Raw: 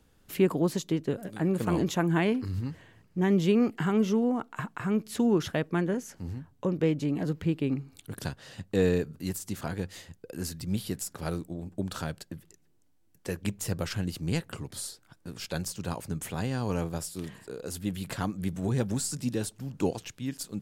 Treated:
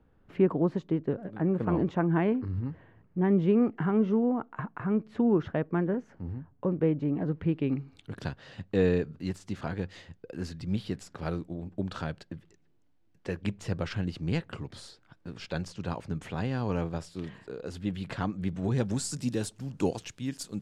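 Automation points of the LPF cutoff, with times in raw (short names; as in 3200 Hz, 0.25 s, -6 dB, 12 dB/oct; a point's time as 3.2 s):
7.25 s 1500 Hz
7.79 s 3600 Hz
18.53 s 3600 Hz
19.13 s 9000 Hz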